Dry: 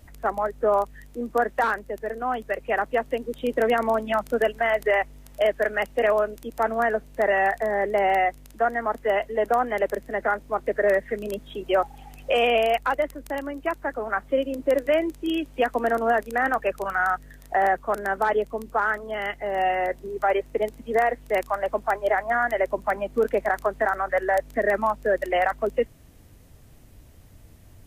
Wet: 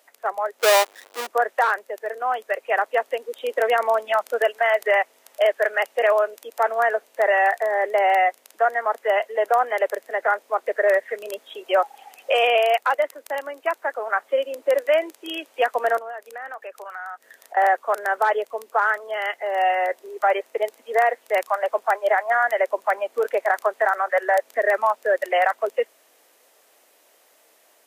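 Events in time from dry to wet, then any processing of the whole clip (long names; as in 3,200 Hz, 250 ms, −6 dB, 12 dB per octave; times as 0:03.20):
0:00.59–0:01.27: each half-wave held at its own peak
0:15.98–0:17.57: downward compressor 3 to 1, threshold −39 dBFS
whole clip: high-pass filter 480 Hz 24 dB per octave; automatic gain control gain up to 3.5 dB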